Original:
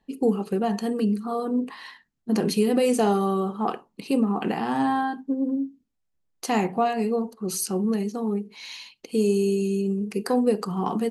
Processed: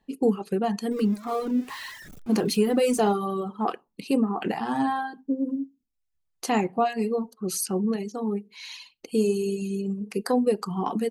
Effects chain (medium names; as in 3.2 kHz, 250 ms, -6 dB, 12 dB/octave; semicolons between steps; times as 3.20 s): 0.91–3.12 s: jump at every zero crossing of -36 dBFS; reverb removal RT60 0.92 s